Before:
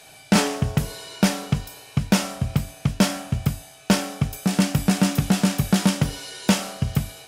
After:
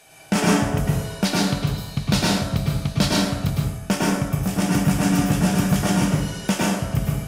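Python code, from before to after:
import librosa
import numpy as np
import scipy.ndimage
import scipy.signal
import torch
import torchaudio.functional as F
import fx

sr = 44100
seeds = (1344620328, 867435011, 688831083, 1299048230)

y = fx.peak_eq(x, sr, hz=4100.0, db=fx.steps((0.0, -5.5), (1.25, 10.0), (3.5, -6.0)), octaves=0.45)
y = fx.rev_plate(y, sr, seeds[0], rt60_s=0.89, hf_ratio=0.5, predelay_ms=95, drr_db=-4.5)
y = y * 10.0 ** (-3.5 / 20.0)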